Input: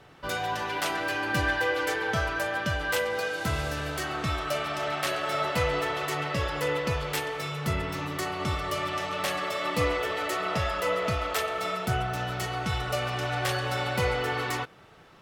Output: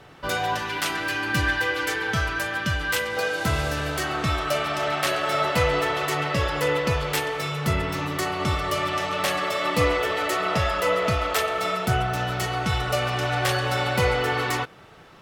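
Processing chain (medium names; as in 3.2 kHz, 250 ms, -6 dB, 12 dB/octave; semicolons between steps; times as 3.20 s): 0.58–3.17 s: peaking EQ 620 Hz -9 dB 1.2 oct; trim +5 dB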